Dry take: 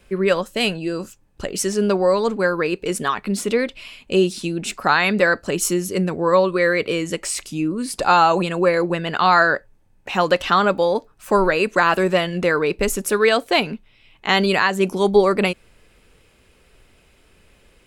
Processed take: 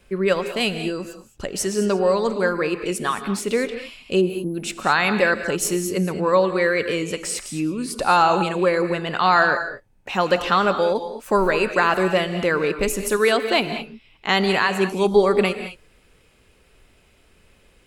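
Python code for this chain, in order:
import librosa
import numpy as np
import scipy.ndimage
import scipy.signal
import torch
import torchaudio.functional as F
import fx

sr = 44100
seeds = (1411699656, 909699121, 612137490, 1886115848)

y = fx.spec_erase(x, sr, start_s=4.21, length_s=0.33, low_hz=1200.0, high_hz=9800.0)
y = fx.rev_gated(y, sr, seeds[0], gate_ms=240, shape='rising', drr_db=9.0)
y = F.gain(torch.from_numpy(y), -2.0).numpy()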